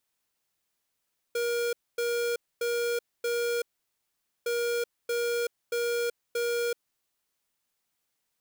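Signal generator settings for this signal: beep pattern square 474 Hz, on 0.38 s, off 0.25 s, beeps 4, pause 0.84 s, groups 2, -28.5 dBFS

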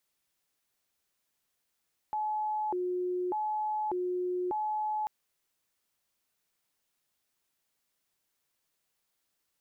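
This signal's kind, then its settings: siren hi-lo 361–854 Hz 0.84/s sine -29 dBFS 2.94 s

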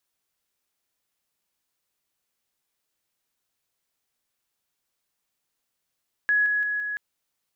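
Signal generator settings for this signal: level ladder 1680 Hz -18 dBFS, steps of -3 dB, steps 4, 0.17 s 0.00 s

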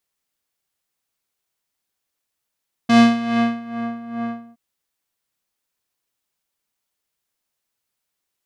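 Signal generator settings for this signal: synth patch with tremolo A#3, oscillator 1 square, interval 0 st, oscillator 2 level -8.5 dB, sub -21 dB, filter lowpass, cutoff 900 Hz, Q 0.82, filter envelope 2.5 oct, filter decay 1.02 s, filter sustain 30%, attack 8.1 ms, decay 0.75 s, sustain -14 dB, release 0.25 s, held 1.42 s, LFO 2.4 Hz, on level 13 dB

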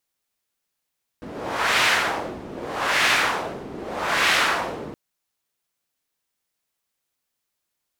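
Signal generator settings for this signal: wind-like swept noise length 3.72 s, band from 330 Hz, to 2100 Hz, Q 1.2, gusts 3, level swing 17 dB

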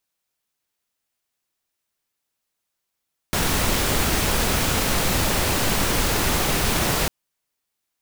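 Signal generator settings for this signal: noise pink, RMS -21 dBFS 3.75 s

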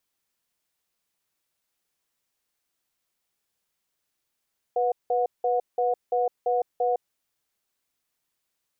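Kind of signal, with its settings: cadence 492 Hz, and 727 Hz, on 0.16 s, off 0.18 s, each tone -23.5 dBFS 2.21 s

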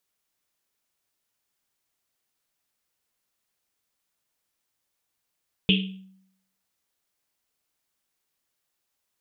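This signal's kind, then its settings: Risset drum, pitch 190 Hz, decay 0.76 s, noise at 3000 Hz, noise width 890 Hz, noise 40%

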